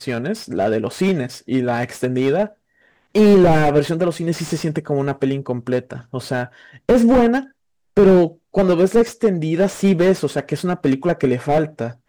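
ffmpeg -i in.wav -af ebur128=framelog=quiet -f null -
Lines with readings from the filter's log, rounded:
Integrated loudness:
  I:         -18.0 LUFS
  Threshold: -28.3 LUFS
Loudness range:
  LRA:         4.5 LU
  Threshold: -37.9 LUFS
  LRA low:   -21.0 LUFS
  LRA high:  -16.5 LUFS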